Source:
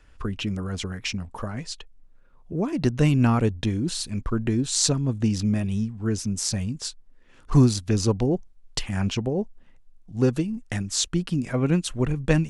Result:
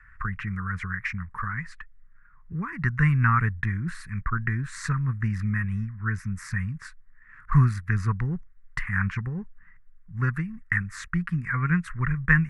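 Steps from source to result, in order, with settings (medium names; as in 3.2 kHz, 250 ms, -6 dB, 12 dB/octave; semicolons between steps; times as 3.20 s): FFT filter 170 Hz 0 dB, 280 Hz -18 dB, 440 Hz -18 dB, 650 Hz -29 dB, 1.1 kHz +6 dB, 1.9 kHz +14 dB, 3.1 kHz -20 dB, 6.9 kHz -20 dB, 11 kHz -13 dB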